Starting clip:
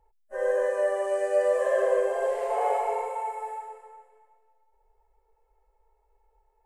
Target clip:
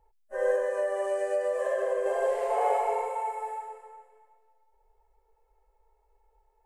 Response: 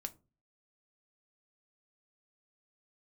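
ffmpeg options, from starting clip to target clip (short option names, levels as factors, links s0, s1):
-filter_complex "[0:a]asettb=1/sr,asplit=3[s0][s1][s2];[s0]atrim=end=0.554[s3];[s1]atrim=start=0.55:end=2.06,asetpts=PTS-STARTPTS,afade=t=in:d=0.004:c=qsin,afade=t=out:st=1.506:d=0.004:c=qsin,acompressor=threshold=0.0562:ratio=6[s4];[s2]atrim=start=2.056[s5];[s3][s4]acrossfade=d=0.004:c1=hsin:c2=qsin[s6];[s6][s5]acrossfade=d=0.004:c1=qsin:c2=hsin"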